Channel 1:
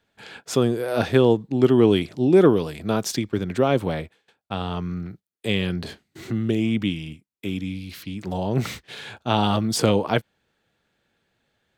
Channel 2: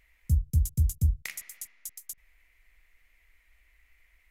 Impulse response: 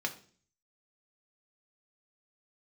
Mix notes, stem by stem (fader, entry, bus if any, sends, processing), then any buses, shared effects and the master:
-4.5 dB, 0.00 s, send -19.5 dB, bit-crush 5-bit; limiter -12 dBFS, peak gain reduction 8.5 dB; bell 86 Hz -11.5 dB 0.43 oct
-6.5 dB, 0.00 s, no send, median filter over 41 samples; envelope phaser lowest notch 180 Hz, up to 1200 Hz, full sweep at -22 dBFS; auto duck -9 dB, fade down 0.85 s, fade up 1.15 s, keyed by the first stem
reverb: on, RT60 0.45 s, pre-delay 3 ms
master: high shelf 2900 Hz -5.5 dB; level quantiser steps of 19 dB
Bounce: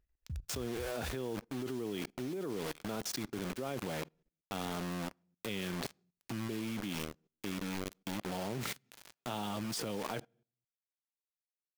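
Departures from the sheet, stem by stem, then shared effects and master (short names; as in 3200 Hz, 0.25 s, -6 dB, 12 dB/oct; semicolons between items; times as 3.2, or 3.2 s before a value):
stem 2: missing envelope phaser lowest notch 180 Hz, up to 1200 Hz, full sweep at -22 dBFS; master: missing high shelf 2900 Hz -5.5 dB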